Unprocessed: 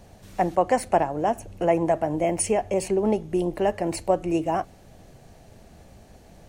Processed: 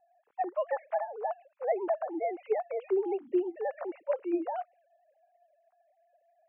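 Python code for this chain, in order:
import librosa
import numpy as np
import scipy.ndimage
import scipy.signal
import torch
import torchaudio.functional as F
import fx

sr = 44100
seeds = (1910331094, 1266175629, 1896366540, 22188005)

y = fx.sine_speech(x, sr)
y = fx.env_lowpass(y, sr, base_hz=1200.0, full_db=-18.0)
y = F.gain(torch.from_numpy(y), -8.5).numpy()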